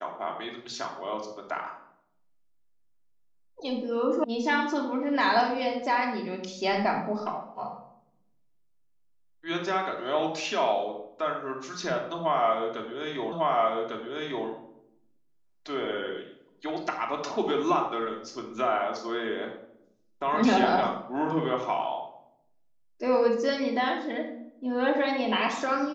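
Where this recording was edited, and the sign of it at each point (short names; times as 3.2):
4.24 sound cut off
13.32 repeat of the last 1.15 s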